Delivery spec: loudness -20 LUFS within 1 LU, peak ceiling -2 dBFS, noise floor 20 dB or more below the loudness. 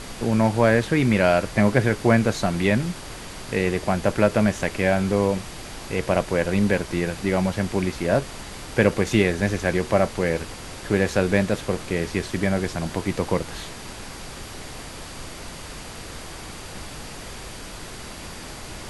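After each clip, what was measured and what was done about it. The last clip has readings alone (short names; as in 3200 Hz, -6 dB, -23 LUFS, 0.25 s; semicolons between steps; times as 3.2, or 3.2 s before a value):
steady tone 4700 Hz; tone level -51 dBFS; noise floor -38 dBFS; noise floor target -43 dBFS; loudness -22.5 LUFS; peak -2.5 dBFS; loudness target -20.0 LUFS
-> notch 4700 Hz, Q 30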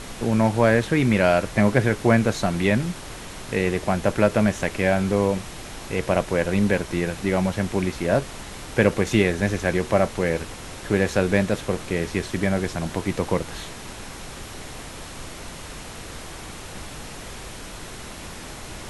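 steady tone none; noise floor -38 dBFS; noise floor target -43 dBFS
-> noise print and reduce 6 dB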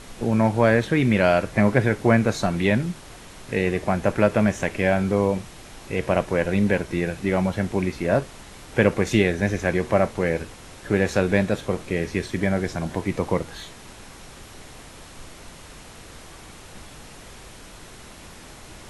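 noise floor -44 dBFS; loudness -22.5 LUFS; peak -2.5 dBFS; loudness target -20.0 LUFS
-> gain +2.5 dB; limiter -2 dBFS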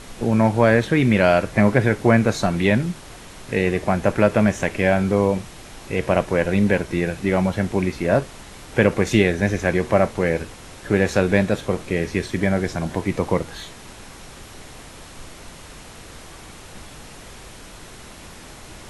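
loudness -20.0 LUFS; peak -2.0 dBFS; noise floor -41 dBFS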